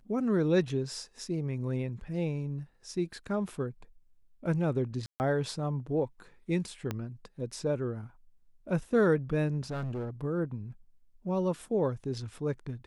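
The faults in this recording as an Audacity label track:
5.060000	5.200000	dropout 139 ms
6.910000	6.910000	pop -19 dBFS
9.700000	10.100000	clipped -31.5 dBFS

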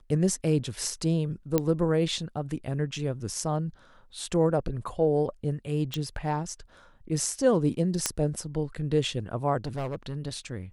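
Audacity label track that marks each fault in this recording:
1.580000	1.580000	pop -10 dBFS
5.940000	5.940000	pop -16 dBFS
8.060000	8.060000	pop -8 dBFS
9.650000	10.160000	clipped -28 dBFS

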